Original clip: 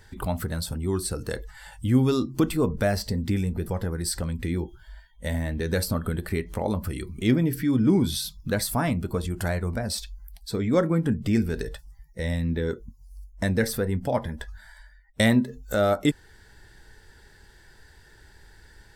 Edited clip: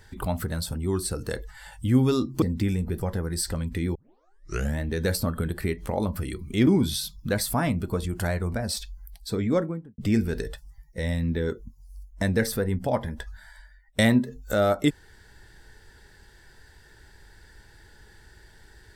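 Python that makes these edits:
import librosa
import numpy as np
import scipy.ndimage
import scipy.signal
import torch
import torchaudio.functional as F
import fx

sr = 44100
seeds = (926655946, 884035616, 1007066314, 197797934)

y = fx.studio_fade_out(x, sr, start_s=10.59, length_s=0.6)
y = fx.edit(y, sr, fx.cut(start_s=2.42, length_s=0.68),
    fx.tape_start(start_s=4.63, length_s=0.84),
    fx.cut(start_s=7.35, length_s=0.53), tone=tone)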